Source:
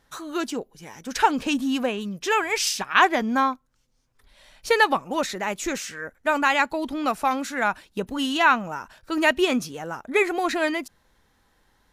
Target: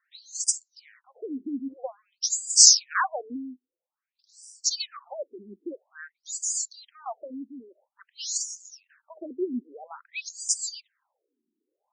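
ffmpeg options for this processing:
-filter_complex "[0:a]acrossover=split=1900[s0][s1];[s1]aexciter=amount=14.1:drive=6.5:freq=5000[s2];[s0][s2]amix=inputs=2:normalize=0,afftfilt=real='re*between(b*sr/1024,280*pow(6700/280,0.5+0.5*sin(2*PI*0.5*pts/sr))/1.41,280*pow(6700/280,0.5+0.5*sin(2*PI*0.5*pts/sr))*1.41)':imag='im*between(b*sr/1024,280*pow(6700/280,0.5+0.5*sin(2*PI*0.5*pts/sr))/1.41,280*pow(6700/280,0.5+0.5*sin(2*PI*0.5*pts/sr))*1.41)':win_size=1024:overlap=0.75,volume=0.473"

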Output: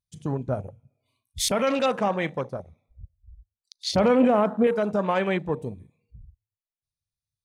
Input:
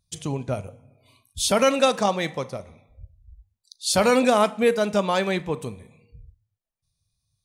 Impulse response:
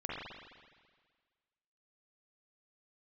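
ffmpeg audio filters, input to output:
-filter_complex "[0:a]alimiter=limit=0.211:level=0:latency=1:release=17,asettb=1/sr,asplit=3[s0][s1][s2];[s0]atrim=end=3.914[s3];[s1]atrim=start=3.91:end=4.67,asetpts=PTS-STARTPTS,afade=t=in:d=0.004:c=qsin,afade=t=out:st=0.756:d=0.004:c=qsin,tiltshelf=f=1100:g=5.5[s4];[s2]atrim=start=4.666[s5];[s3][s4]acrossfade=d=0.004:c1=hsin:c2=qsin[s6];[s6][s5]acrossfade=d=0.004:c1=qsin:c2=hsin,afwtdn=0.0224"

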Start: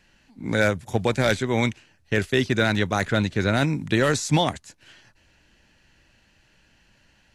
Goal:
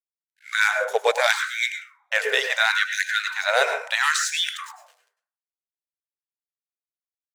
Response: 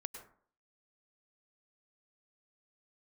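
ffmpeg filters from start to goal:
-filter_complex "[0:a]aeval=exprs='sgn(val(0))*max(abs(val(0))-0.00531,0)':c=same[s0];[1:a]atrim=start_sample=2205[s1];[s0][s1]afir=irnorm=-1:irlink=0,afftfilt=real='re*gte(b*sr/1024,400*pow(1500/400,0.5+0.5*sin(2*PI*0.74*pts/sr)))':imag='im*gte(b*sr/1024,400*pow(1500/400,0.5+0.5*sin(2*PI*0.74*pts/sr)))':win_size=1024:overlap=0.75,volume=2.66"

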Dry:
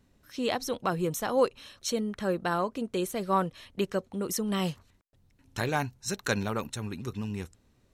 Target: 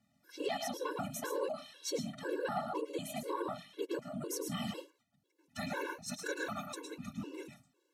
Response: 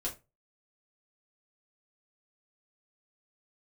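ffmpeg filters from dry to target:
-filter_complex "[0:a]asplit=2[s0][s1];[1:a]atrim=start_sample=2205,lowshelf=f=310:g=-9,adelay=106[s2];[s1][s2]afir=irnorm=-1:irlink=0,volume=0.473[s3];[s0][s3]amix=inputs=2:normalize=0,acontrast=37,afftfilt=real='hypot(re,im)*cos(2*PI*random(0))':imag='hypot(re,im)*sin(2*PI*random(1))':win_size=512:overlap=0.75,alimiter=limit=0.0841:level=0:latency=1:release=47,highpass=180,afftfilt=real='re*gt(sin(2*PI*2*pts/sr)*(1-2*mod(floor(b*sr/1024/290),2)),0)':imag='im*gt(sin(2*PI*2*pts/sr)*(1-2*mod(floor(b*sr/1024/290),2)),0)':win_size=1024:overlap=0.75,volume=0.708"

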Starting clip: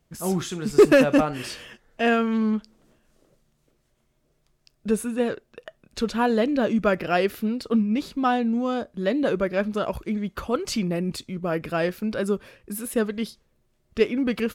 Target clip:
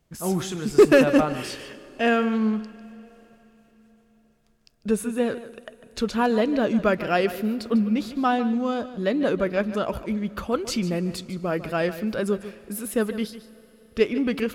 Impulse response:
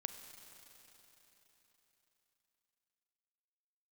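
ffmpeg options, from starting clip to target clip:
-filter_complex "[0:a]asplit=2[s0][s1];[1:a]atrim=start_sample=2205,adelay=149[s2];[s1][s2]afir=irnorm=-1:irlink=0,volume=0.282[s3];[s0][s3]amix=inputs=2:normalize=0"

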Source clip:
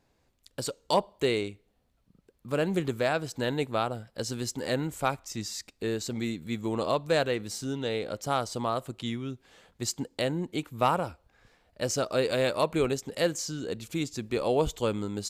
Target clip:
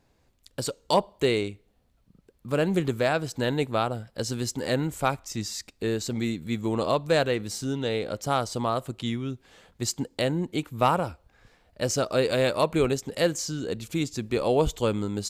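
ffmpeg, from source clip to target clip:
-af "lowshelf=f=170:g=3.5,volume=1.33"

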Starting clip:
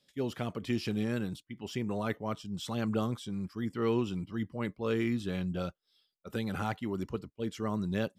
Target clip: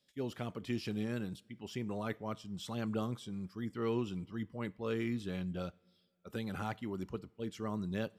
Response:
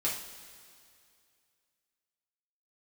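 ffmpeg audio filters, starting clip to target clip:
-filter_complex "[0:a]asplit=2[s0][s1];[1:a]atrim=start_sample=2205,adelay=16[s2];[s1][s2]afir=irnorm=-1:irlink=0,volume=0.0447[s3];[s0][s3]amix=inputs=2:normalize=0,volume=0.562"

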